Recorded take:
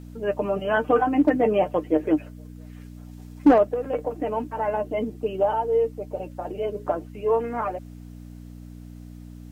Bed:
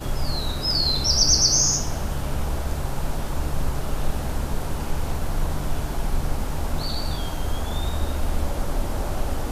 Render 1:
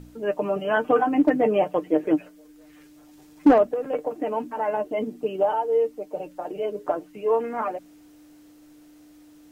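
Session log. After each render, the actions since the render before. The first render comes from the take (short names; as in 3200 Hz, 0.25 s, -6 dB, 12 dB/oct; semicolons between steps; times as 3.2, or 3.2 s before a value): de-hum 60 Hz, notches 4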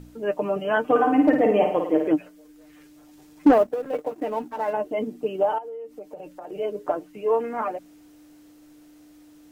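0.83–2.08 flutter echo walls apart 9.1 m, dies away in 0.6 s; 3.53–4.73 G.711 law mismatch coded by A; 5.58–6.52 compressor 16:1, threshold -33 dBFS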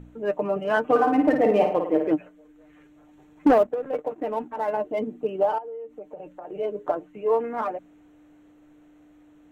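Wiener smoothing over 9 samples; bell 290 Hz -3.5 dB 0.26 oct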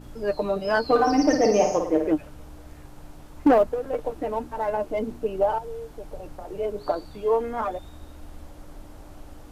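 add bed -18.5 dB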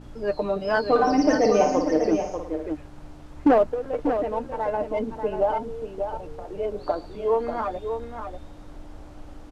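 air absorption 57 m; echo 0.59 s -7.5 dB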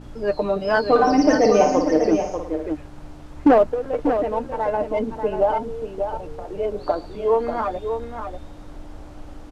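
gain +3.5 dB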